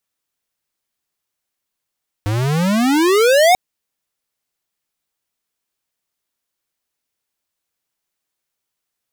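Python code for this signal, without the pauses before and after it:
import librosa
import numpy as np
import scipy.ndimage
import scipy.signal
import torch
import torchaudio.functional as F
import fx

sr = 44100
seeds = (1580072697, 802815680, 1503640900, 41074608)

y = fx.riser_tone(sr, length_s=1.29, level_db=-10.0, wave='square', hz=100.0, rise_st=35.0, swell_db=8.5)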